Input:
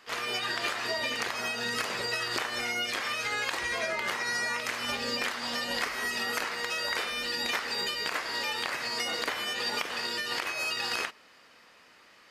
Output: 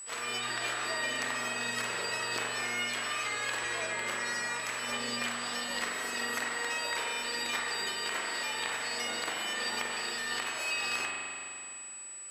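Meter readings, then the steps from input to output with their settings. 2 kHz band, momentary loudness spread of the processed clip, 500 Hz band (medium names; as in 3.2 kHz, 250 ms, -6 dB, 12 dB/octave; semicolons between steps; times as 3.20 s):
-2.0 dB, 2 LU, -3.5 dB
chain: bass shelf 150 Hz -7 dB; whistle 7.9 kHz -37 dBFS; spring tank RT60 2.6 s, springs 42 ms, chirp 25 ms, DRR -0.5 dB; trim -5 dB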